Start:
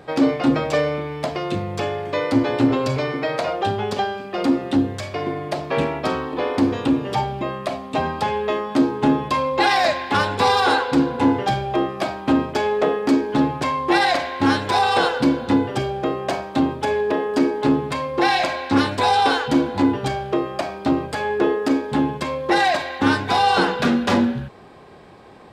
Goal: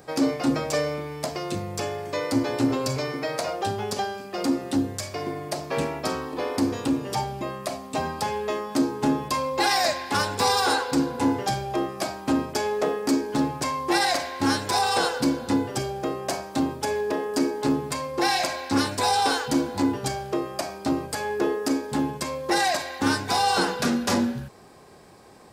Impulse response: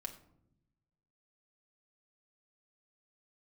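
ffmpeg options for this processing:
-af "aexciter=amount=3.5:drive=7.4:freq=4.8k,volume=-5.5dB"

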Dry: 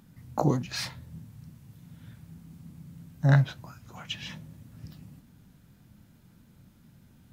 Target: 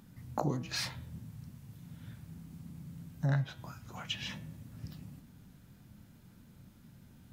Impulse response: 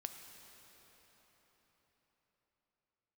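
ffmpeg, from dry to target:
-af "bandreject=f=160.9:t=h:w=4,bandreject=f=321.8:t=h:w=4,bandreject=f=482.7:t=h:w=4,bandreject=f=643.6:t=h:w=4,bandreject=f=804.5:t=h:w=4,bandreject=f=965.4:t=h:w=4,bandreject=f=1.1263k:t=h:w=4,bandreject=f=1.2872k:t=h:w=4,bandreject=f=1.4481k:t=h:w=4,bandreject=f=1.609k:t=h:w=4,bandreject=f=1.7699k:t=h:w=4,bandreject=f=1.9308k:t=h:w=4,bandreject=f=2.0917k:t=h:w=4,bandreject=f=2.2526k:t=h:w=4,bandreject=f=2.4135k:t=h:w=4,bandreject=f=2.5744k:t=h:w=4,bandreject=f=2.7353k:t=h:w=4,bandreject=f=2.8962k:t=h:w=4,bandreject=f=3.0571k:t=h:w=4,bandreject=f=3.218k:t=h:w=4,bandreject=f=3.3789k:t=h:w=4,bandreject=f=3.5398k:t=h:w=4,bandreject=f=3.7007k:t=h:w=4,bandreject=f=3.8616k:t=h:w=4,acompressor=threshold=-32dB:ratio=2.5"

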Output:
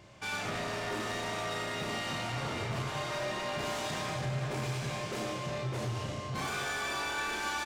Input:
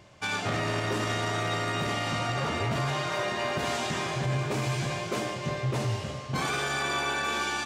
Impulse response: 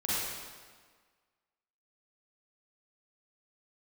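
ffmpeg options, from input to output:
-filter_complex "[0:a]asoftclip=type=tanh:threshold=-31.5dB,asplit=2[a][b];[b]adelay=32,volume=-4.5dB[c];[a][c]amix=inputs=2:normalize=0,asplit=2[d][e];[1:a]atrim=start_sample=2205,adelay=35[f];[e][f]afir=irnorm=-1:irlink=0,volume=-15dB[g];[d][g]amix=inputs=2:normalize=0,volume=-2.5dB"

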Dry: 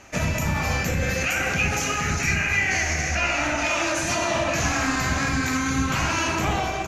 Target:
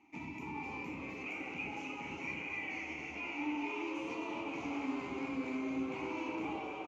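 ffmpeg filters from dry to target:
-filter_complex "[0:a]asplit=3[a][b][c];[a]bandpass=f=300:t=q:w=8,volume=0dB[d];[b]bandpass=f=870:t=q:w=8,volume=-6dB[e];[c]bandpass=f=2.24k:t=q:w=8,volume=-9dB[f];[d][e][f]amix=inputs=3:normalize=0,asplit=9[g][h][i][j][k][l][m][n][o];[h]adelay=261,afreqshift=120,volume=-9dB[p];[i]adelay=522,afreqshift=240,volume=-12.9dB[q];[j]adelay=783,afreqshift=360,volume=-16.8dB[r];[k]adelay=1044,afreqshift=480,volume=-20.6dB[s];[l]adelay=1305,afreqshift=600,volume=-24.5dB[t];[m]adelay=1566,afreqshift=720,volume=-28.4dB[u];[n]adelay=1827,afreqshift=840,volume=-32.3dB[v];[o]adelay=2088,afreqshift=960,volume=-36.1dB[w];[g][p][q][r][s][t][u][v][w]amix=inputs=9:normalize=0,volume=-4.5dB"

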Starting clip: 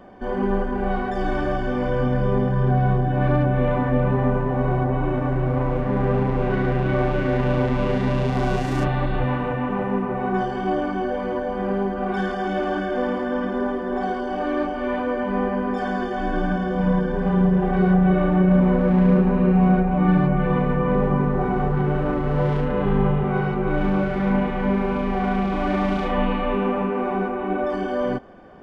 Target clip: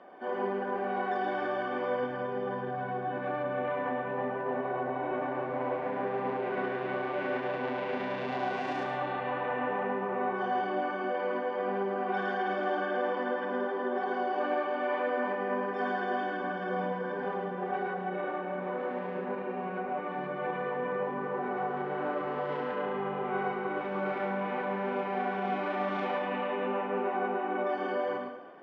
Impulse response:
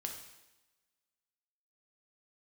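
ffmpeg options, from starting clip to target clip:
-filter_complex "[0:a]alimiter=limit=-16dB:level=0:latency=1:release=88,highpass=430,lowpass=3.4k,asplit=2[a][b];[1:a]atrim=start_sample=2205,adelay=107[c];[b][c]afir=irnorm=-1:irlink=0,volume=-2dB[d];[a][d]amix=inputs=2:normalize=0,volume=-4dB"

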